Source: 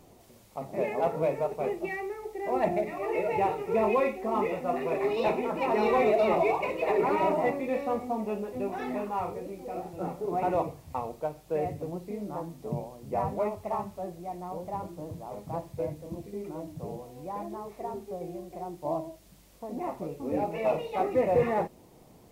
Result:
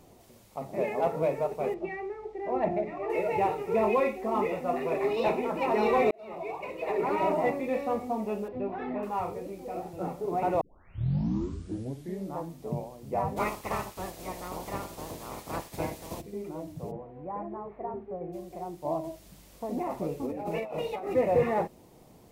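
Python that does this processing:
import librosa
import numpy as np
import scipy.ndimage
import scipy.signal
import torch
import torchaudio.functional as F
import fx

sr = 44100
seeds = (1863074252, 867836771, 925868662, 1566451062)

y = fx.spacing_loss(x, sr, db_at_10k=22, at=(1.74, 3.1))
y = fx.air_absorb(y, sr, metres=350.0, at=(8.48, 9.03))
y = fx.spec_clip(y, sr, under_db=23, at=(13.36, 16.2), fade=0.02)
y = fx.lowpass(y, sr, hz=2000.0, slope=24, at=(16.9, 18.32), fade=0.02)
y = fx.over_compress(y, sr, threshold_db=-34.0, ratio=-1.0, at=(19.03, 21.13), fade=0.02)
y = fx.edit(y, sr, fx.fade_in_span(start_s=6.11, length_s=1.28),
    fx.tape_start(start_s=10.61, length_s=1.72), tone=tone)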